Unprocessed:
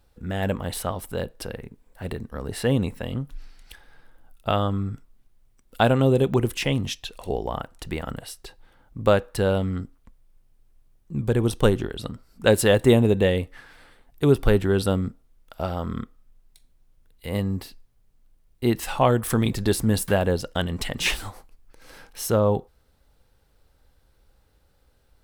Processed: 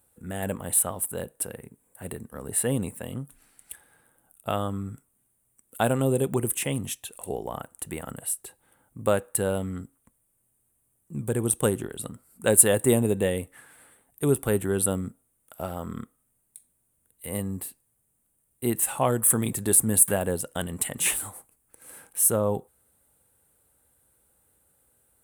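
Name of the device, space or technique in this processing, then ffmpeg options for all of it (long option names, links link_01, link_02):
budget condenser microphone: -af "highpass=100,highshelf=frequency=6800:width_type=q:width=3:gain=12,volume=-4.5dB"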